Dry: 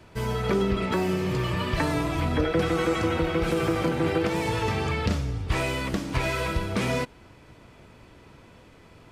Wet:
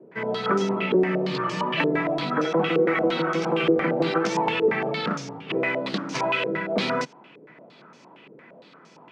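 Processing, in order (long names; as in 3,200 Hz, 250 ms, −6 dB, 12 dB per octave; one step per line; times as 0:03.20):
Butterworth high-pass 150 Hz 48 dB per octave
low-pass on a step sequencer 8.7 Hz 440–6,000 Hz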